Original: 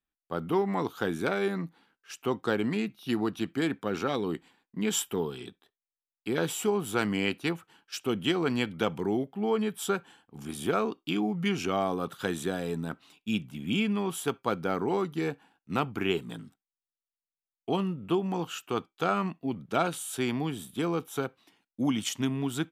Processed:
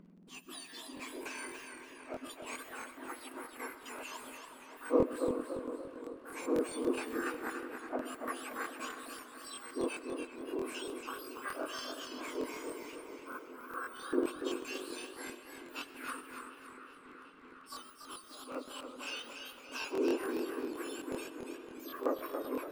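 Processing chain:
frequency axis turned over on the octave scale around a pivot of 1,900 Hz
delay with a low-pass on its return 371 ms, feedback 68%, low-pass 2,800 Hz, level −12 dB
on a send at −15 dB: convolution reverb RT60 0.50 s, pre-delay 80 ms
on the sum: upward compression, threshold −43 dBFS
surface crackle 18 per second −45 dBFS
RIAA equalisation playback
regular buffer underruns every 0.13 s, samples 1,024, repeat, from 0:00.82
feedback echo with a swinging delay time 284 ms, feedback 45%, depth 93 cents, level −6.5 dB
level −4.5 dB

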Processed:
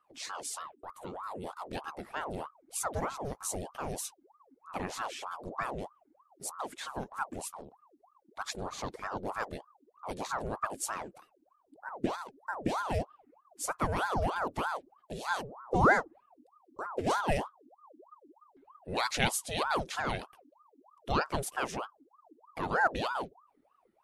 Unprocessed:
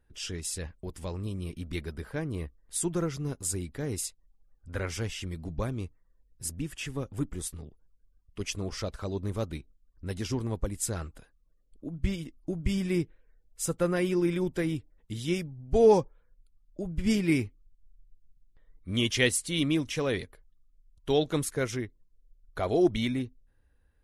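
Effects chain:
0:00.59–0:01.44: phaser with its sweep stopped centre 1,400 Hz, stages 6
ring modulator whose carrier an LFO sweeps 750 Hz, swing 65%, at 3.2 Hz
level −1.5 dB

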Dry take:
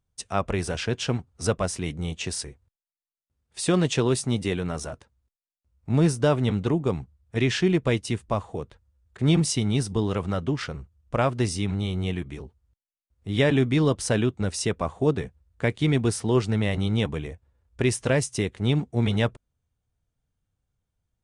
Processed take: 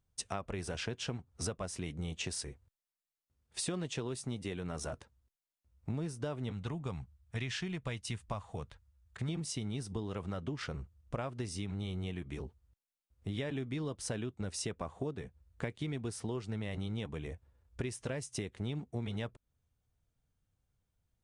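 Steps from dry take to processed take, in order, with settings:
0:06.52–0:09.29: parametric band 350 Hz −11 dB 1.5 octaves
downward compressor 12 to 1, threshold −33 dBFS, peak gain reduction 17.5 dB
level −1.5 dB

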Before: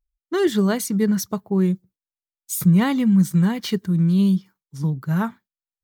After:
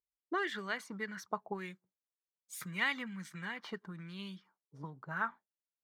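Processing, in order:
0:01.51–0:03.03: high-shelf EQ 4,100 Hz +8 dB
envelope filter 420–2,100 Hz, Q 2.3, up, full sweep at −15 dBFS
level −1.5 dB

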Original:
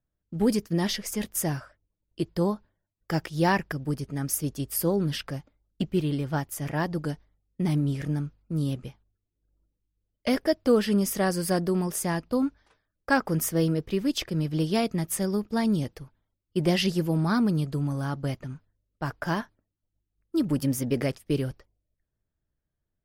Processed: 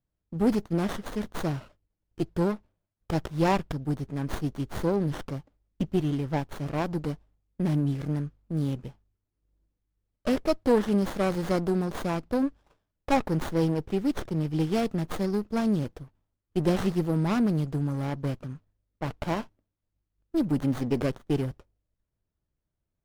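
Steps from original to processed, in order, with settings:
windowed peak hold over 17 samples

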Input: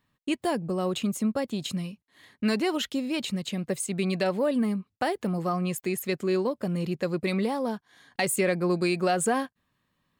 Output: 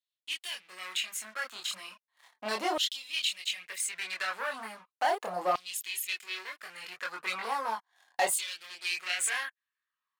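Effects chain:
leveller curve on the samples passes 3
multi-voice chorus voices 2, 0.27 Hz, delay 25 ms, depth 3.2 ms
auto-filter high-pass saw down 0.36 Hz 620–3,800 Hz
level −7 dB

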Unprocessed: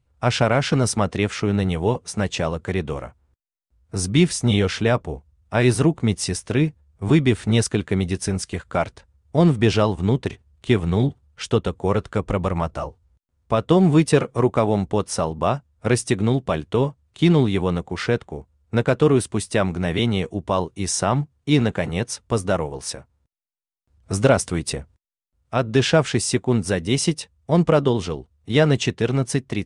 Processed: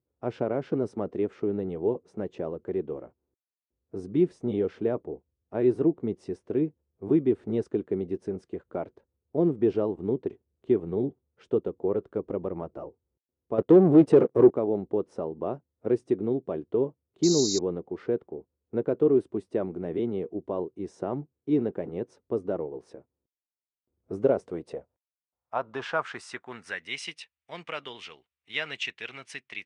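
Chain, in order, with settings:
0:13.58–0:14.51: leveller curve on the samples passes 3
band-pass filter sweep 370 Hz → 2,400 Hz, 0:24.15–0:27.10
0:17.23–0:17.59: sound drawn into the spectrogram noise 3,700–7,400 Hz −29 dBFS
level −1.5 dB

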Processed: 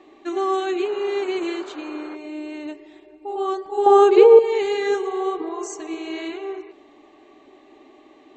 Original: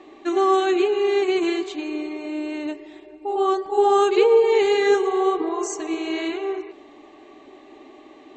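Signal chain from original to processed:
0:00.84–0:02.14: noise in a band 270–1,500 Hz −38 dBFS
0:03.86–0:04.39: parametric band 510 Hz +10 dB 2.9 octaves
level −4 dB

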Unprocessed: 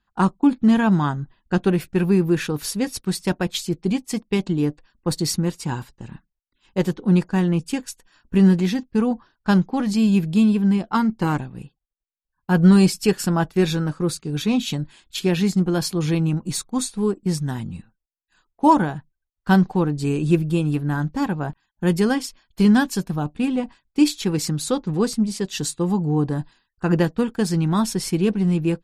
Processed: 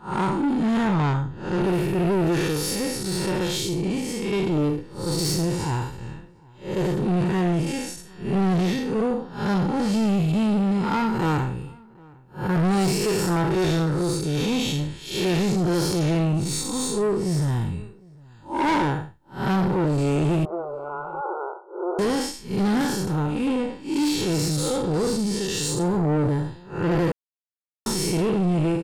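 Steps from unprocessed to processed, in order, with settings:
spectrum smeared in time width 183 ms
comb filter 2.2 ms, depth 49%
soft clipping −26.5 dBFS, distortion −8 dB
0:20.45–0:21.99: linear-phase brick-wall band-pass 340–1,500 Hz
slap from a distant wall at 130 metres, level −25 dB
0:27.12–0:27.86: silence
level +8 dB

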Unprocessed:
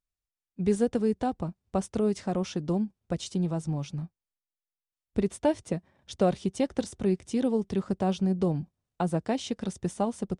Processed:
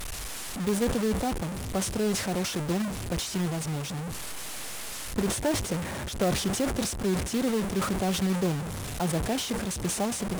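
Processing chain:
linear delta modulator 64 kbit/s, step −28.5 dBFS
log-companded quantiser 4 bits
level that may fall only so fast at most 60 dB per second
level −2.5 dB

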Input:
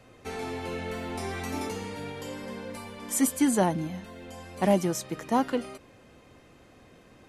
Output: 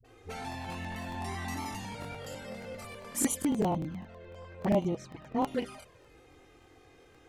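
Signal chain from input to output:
dynamic equaliser 280 Hz, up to −4 dB, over −35 dBFS, Q 1.1
flanger swept by the level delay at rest 2.7 ms, full sweep at −23 dBFS
0:03.38–0:05.43: head-to-tape spacing loss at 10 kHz 25 dB
all-pass dispersion highs, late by 46 ms, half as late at 410 Hz
regular buffer underruns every 0.10 s, samples 1,024, repeat, from 0:00.40

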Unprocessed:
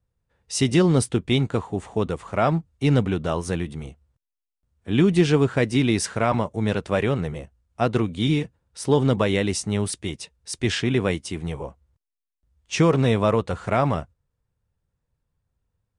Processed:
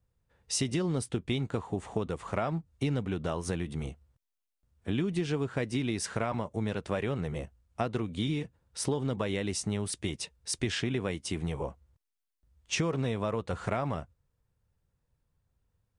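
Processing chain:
downward compressor 6 to 1, threshold −28 dBFS, peak gain reduction 15 dB

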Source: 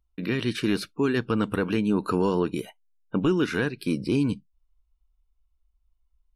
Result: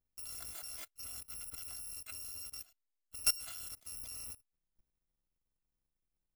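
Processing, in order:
samples in bit-reversed order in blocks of 256 samples
output level in coarse steps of 20 dB
level −5.5 dB

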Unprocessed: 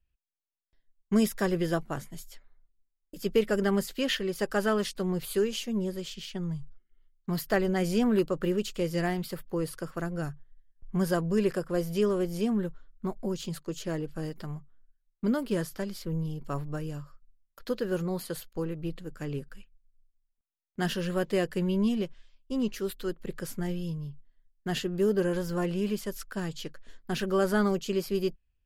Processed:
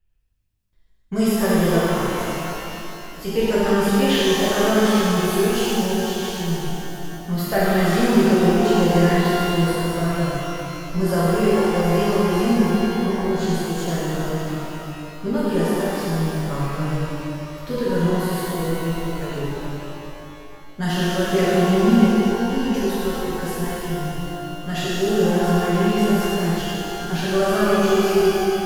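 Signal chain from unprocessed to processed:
phase shifter 0.23 Hz, delay 2.5 ms, feedback 28%
reverb with rising layers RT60 3 s, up +12 semitones, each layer −8 dB, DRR −10 dB
level −1 dB

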